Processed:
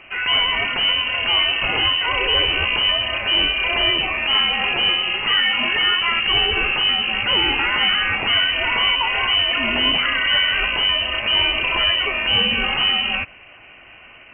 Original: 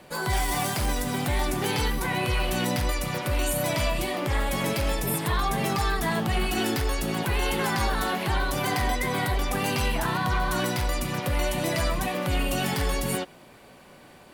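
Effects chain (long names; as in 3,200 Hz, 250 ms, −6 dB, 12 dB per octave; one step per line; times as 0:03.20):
high-shelf EQ 2,100 Hz +6 dB
voice inversion scrambler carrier 3,000 Hz
level +5.5 dB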